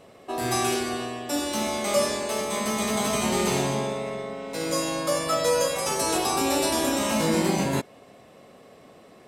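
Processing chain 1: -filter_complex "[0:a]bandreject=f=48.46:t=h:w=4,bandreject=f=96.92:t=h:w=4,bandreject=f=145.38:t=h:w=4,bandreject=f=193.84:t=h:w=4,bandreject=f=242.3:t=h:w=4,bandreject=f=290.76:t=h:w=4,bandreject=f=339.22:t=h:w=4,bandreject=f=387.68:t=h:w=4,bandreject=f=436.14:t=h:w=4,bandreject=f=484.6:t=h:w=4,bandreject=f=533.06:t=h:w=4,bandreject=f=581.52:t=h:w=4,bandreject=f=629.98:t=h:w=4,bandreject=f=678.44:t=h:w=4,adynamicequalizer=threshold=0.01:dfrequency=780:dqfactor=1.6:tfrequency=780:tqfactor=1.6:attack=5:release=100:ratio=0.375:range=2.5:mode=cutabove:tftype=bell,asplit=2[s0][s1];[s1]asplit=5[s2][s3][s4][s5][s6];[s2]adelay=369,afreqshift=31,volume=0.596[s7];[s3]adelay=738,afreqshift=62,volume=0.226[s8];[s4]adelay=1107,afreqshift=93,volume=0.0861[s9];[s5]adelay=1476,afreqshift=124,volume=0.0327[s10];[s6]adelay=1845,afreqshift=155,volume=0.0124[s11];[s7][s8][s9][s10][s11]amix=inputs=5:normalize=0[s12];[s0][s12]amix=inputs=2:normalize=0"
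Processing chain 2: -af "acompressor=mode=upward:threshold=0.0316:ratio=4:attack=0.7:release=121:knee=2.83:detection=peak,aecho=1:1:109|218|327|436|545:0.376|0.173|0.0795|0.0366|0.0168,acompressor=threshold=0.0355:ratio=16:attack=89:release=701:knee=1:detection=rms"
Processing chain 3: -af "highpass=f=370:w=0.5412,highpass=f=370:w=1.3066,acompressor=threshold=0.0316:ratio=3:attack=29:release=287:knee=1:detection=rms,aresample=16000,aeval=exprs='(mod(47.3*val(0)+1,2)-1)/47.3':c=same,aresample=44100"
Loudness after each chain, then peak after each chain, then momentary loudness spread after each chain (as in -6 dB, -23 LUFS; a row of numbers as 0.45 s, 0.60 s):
-25.5 LUFS, -32.5 LUFS, -36.0 LUFS; -11.0 dBFS, -17.5 dBFS, -28.5 dBFS; 9 LU, 9 LU, 16 LU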